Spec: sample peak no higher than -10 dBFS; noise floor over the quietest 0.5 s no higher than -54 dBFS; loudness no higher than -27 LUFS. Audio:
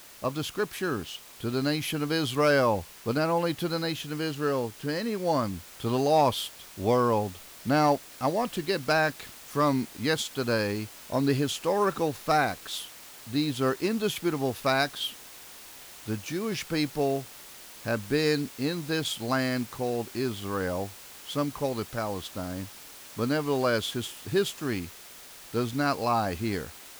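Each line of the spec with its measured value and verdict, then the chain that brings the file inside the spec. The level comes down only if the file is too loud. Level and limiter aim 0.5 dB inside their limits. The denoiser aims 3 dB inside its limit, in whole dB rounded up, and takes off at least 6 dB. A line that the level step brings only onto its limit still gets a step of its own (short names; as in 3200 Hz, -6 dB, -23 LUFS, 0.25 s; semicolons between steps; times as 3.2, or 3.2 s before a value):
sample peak -13.0 dBFS: OK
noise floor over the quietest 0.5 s -47 dBFS: fail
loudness -28.5 LUFS: OK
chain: denoiser 10 dB, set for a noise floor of -47 dBFS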